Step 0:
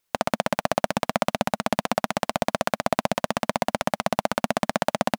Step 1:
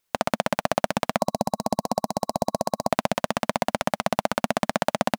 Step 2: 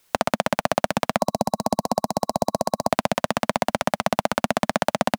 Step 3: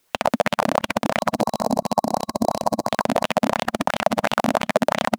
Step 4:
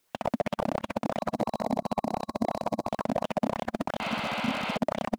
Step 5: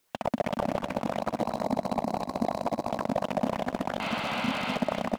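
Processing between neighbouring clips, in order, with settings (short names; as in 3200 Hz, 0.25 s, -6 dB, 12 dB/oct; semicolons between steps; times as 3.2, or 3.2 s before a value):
spectral gain 1.2–2.91, 1100–3900 Hz -16 dB
three-band squash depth 40%; gain +2 dB
reverse delay 0.203 s, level -1 dB; LFO bell 2.9 Hz 250–3300 Hz +11 dB; gain -4 dB
spectral repair 4.03–4.74, 280–4900 Hz before; slew limiter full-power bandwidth 160 Hz; gain -6.5 dB
feedback echo 0.232 s, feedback 35%, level -9 dB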